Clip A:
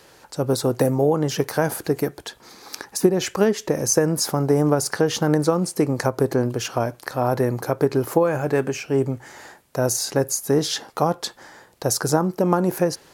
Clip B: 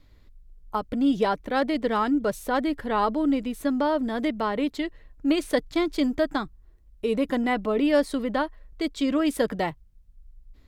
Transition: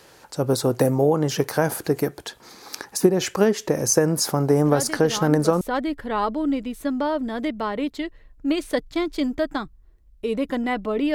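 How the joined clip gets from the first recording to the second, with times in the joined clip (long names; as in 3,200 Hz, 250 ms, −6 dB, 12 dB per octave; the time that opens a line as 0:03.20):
clip A
0:04.64: mix in clip B from 0:01.44 0.97 s −7 dB
0:05.61: continue with clip B from 0:02.41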